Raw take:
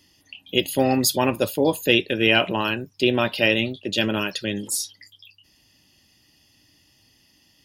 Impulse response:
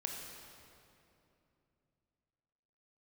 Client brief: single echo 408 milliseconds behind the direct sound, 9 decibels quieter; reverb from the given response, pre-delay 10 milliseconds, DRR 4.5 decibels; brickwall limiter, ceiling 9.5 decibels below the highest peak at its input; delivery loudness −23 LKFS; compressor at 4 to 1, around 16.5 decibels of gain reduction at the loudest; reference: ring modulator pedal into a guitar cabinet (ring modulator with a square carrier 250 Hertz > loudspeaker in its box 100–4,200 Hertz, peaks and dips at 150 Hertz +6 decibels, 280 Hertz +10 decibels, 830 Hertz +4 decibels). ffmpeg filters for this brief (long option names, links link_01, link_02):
-filter_complex "[0:a]acompressor=threshold=-34dB:ratio=4,alimiter=level_in=3.5dB:limit=-24dB:level=0:latency=1,volume=-3.5dB,aecho=1:1:408:0.355,asplit=2[link_01][link_02];[1:a]atrim=start_sample=2205,adelay=10[link_03];[link_02][link_03]afir=irnorm=-1:irlink=0,volume=-5dB[link_04];[link_01][link_04]amix=inputs=2:normalize=0,aeval=exprs='val(0)*sgn(sin(2*PI*250*n/s))':channel_layout=same,highpass=100,equalizer=frequency=150:width_type=q:width=4:gain=6,equalizer=frequency=280:width_type=q:width=4:gain=10,equalizer=frequency=830:width_type=q:width=4:gain=4,lowpass=frequency=4200:width=0.5412,lowpass=frequency=4200:width=1.3066,volume=14dB"